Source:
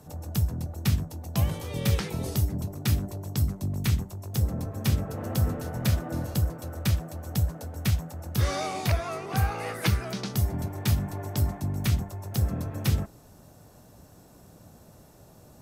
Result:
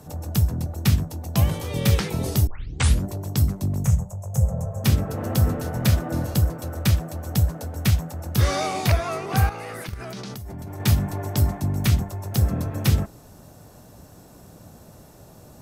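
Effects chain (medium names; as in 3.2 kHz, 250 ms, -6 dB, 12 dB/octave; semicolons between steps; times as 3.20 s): 2.47 s: tape start 0.58 s; 3.84–4.84 s: FFT filter 180 Hz 0 dB, 290 Hz -25 dB, 540 Hz +4 dB, 4.3 kHz -22 dB, 6.7 kHz +3 dB, 15 kHz -10 dB; 9.49–10.80 s: level held to a coarse grid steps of 20 dB; trim +5.5 dB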